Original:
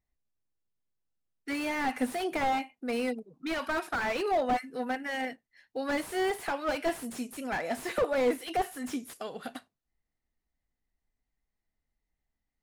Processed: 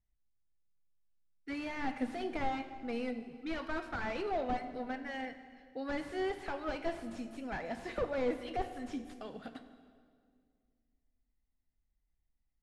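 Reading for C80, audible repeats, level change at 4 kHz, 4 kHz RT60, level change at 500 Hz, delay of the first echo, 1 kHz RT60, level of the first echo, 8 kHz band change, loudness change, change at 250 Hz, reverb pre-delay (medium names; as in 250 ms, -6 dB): 12.0 dB, no echo, -8.5 dB, 1.7 s, -6.5 dB, no echo, 1.9 s, no echo, -16.0 dB, -6.5 dB, -5.0 dB, 8 ms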